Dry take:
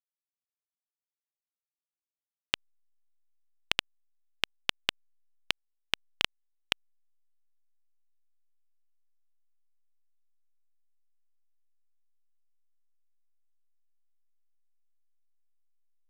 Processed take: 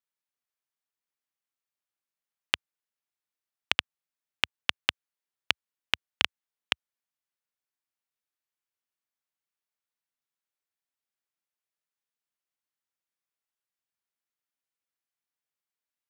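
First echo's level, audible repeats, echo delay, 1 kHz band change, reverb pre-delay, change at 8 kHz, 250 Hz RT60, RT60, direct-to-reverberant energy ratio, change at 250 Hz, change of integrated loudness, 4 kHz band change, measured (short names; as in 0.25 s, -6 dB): none, none, none, +4.0 dB, none, +0.5 dB, none, none, none, +0.5 dB, +3.5 dB, +3.0 dB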